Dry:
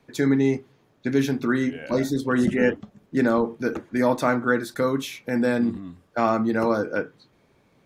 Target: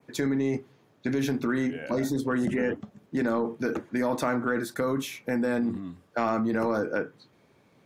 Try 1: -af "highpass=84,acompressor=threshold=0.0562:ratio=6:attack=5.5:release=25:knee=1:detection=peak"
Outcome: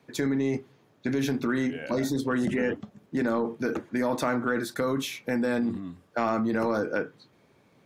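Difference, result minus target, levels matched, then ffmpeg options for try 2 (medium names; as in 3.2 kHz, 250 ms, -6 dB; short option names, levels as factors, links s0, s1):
4 kHz band +2.5 dB
-af "highpass=84,acompressor=threshold=0.0562:ratio=6:attack=5.5:release=25:knee=1:detection=peak,adynamicequalizer=threshold=0.00316:dfrequency=3900:dqfactor=1.1:tfrequency=3900:tqfactor=1.1:attack=5:release=100:ratio=0.438:range=2.5:mode=cutabove:tftype=bell"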